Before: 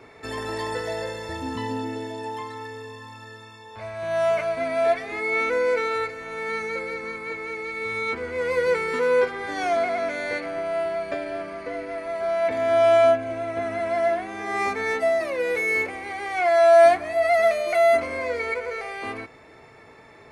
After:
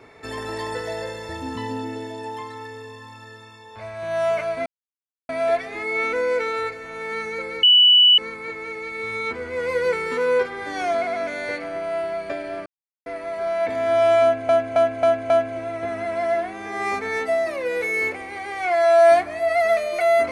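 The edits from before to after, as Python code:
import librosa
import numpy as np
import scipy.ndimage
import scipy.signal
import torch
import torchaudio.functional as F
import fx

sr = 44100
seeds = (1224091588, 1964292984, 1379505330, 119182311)

y = fx.edit(x, sr, fx.insert_silence(at_s=4.66, length_s=0.63),
    fx.insert_tone(at_s=7.0, length_s=0.55, hz=2960.0, db=-9.5),
    fx.silence(start_s=11.48, length_s=0.4),
    fx.repeat(start_s=13.04, length_s=0.27, count=5), tone=tone)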